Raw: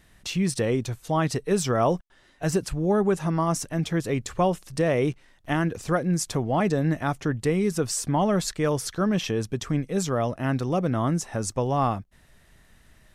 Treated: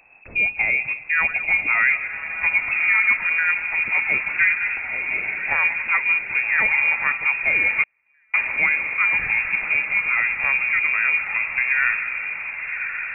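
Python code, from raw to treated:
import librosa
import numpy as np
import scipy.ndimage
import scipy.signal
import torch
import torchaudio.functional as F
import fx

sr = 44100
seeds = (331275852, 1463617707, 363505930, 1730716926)

y = fx.reverse_delay_fb(x, sr, ms=104, feedback_pct=57, wet_db=-13.0)
y = fx.over_compress(y, sr, threshold_db=-31.0, ratio=-1.0, at=(4.58, 5.5), fade=0.02)
y = fx.freq_invert(y, sr, carrier_hz=2600)
y = fx.echo_diffused(y, sr, ms=1138, feedback_pct=54, wet_db=-7.5)
y = fx.gate_flip(y, sr, shuts_db=-21.0, range_db=-42, at=(7.83, 8.34))
y = F.gain(torch.from_numpy(y), 3.0).numpy()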